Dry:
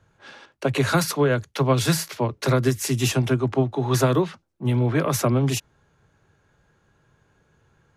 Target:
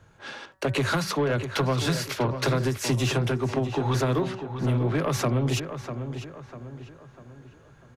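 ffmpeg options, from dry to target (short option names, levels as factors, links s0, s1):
-filter_complex "[0:a]acrossover=split=5700[s0][s1];[s1]acompressor=threshold=0.01:ratio=4:attack=1:release=60[s2];[s0][s2]amix=inputs=2:normalize=0,bandreject=f=189.2:t=h:w=4,bandreject=f=378.4:t=h:w=4,bandreject=f=567.6:t=h:w=4,bandreject=f=756.8:t=h:w=4,bandreject=f=946:t=h:w=4,bandreject=f=1135.2:t=h:w=4,bandreject=f=1324.4:t=h:w=4,bandreject=f=1513.6:t=h:w=4,bandreject=f=1702.8:t=h:w=4,bandreject=f=1892:t=h:w=4,acompressor=threshold=0.0562:ratio=5,asoftclip=type=tanh:threshold=0.0668,asplit=2[s3][s4];[s4]adelay=647,lowpass=f=2800:p=1,volume=0.355,asplit=2[s5][s6];[s6]adelay=647,lowpass=f=2800:p=1,volume=0.44,asplit=2[s7][s8];[s8]adelay=647,lowpass=f=2800:p=1,volume=0.44,asplit=2[s9][s10];[s10]adelay=647,lowpass=f=2800:p=1,volume=0.44,asplit=2[s11][s12];[s12]adelay=647,lowpass=f=2800:p=1,volume=0.44[s13];[s5][s7][s9][s11][s13]amix=inputs=5:normalize=0[s14];[s3][s14]amix=inputs=2:normalize=0,volume=1.88"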